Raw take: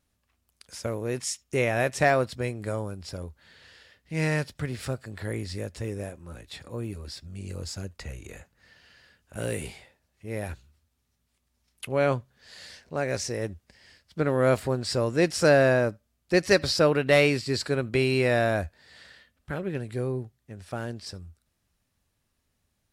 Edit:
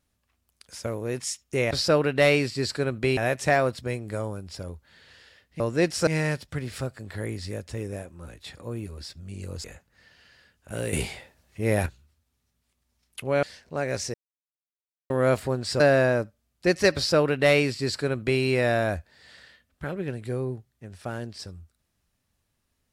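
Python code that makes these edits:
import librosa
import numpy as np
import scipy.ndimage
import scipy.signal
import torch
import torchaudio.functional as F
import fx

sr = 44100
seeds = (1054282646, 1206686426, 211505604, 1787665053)

y = fx.edit(x, sr, fx.cut(start_s=7.71, length_s=0.58),
    fx.clip_gain(start_s=9.58, length_s=0.93, db=9.5),
    fx.cut(start_s=12.08, length_s=0.55),
    fx.silence(start_s=13.34, length_s=0.96),
    fx.move(start_s=15.0, length_s=0.47, to_s=4.14),
    fx.duplicate(start_s=16.62, length_s=1.46, to_s=1.71), tone=tone)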